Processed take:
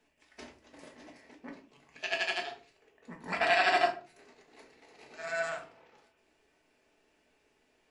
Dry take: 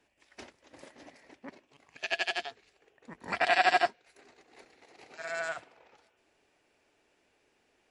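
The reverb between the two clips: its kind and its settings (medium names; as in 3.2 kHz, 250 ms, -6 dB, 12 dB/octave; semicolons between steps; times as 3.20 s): simulated room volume 230 m³, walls furnished, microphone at 1.5 m; trim -2.5 dB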